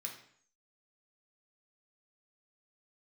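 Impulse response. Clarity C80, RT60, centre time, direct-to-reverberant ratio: 10.5 dB, 0.60 s, 23 ms, −0.5 dB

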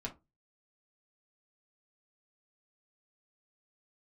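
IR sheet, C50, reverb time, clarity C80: 15.0 dB, 0.25 s, 25.5 dB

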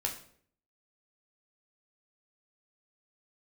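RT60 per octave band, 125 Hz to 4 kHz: 0.75, 0.70, 0.65, 0.50, 0.50, 0.45 seconds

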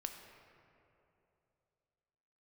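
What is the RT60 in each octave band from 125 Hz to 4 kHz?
3.1, 2.9, 3.2, 2.7, 2.2, 1.5 seconds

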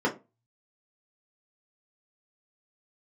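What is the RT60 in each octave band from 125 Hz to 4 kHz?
0.70, 0.30, 0.30, 0.25, 0.20, 0.15 seconds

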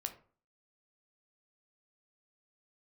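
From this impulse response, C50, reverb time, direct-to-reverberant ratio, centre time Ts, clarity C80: 12.5 dB, 0.45 s, 5.5 dB, 9 ms, 17.0 dB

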